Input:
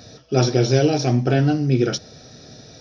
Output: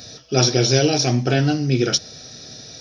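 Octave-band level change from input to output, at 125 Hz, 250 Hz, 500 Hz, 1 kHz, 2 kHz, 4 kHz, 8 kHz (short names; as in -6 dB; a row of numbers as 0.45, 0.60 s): -1.0 dB, -1.0 dB, -0.5 dB, +0.5 dB, +3.5 dB, +8.0 dB, n/a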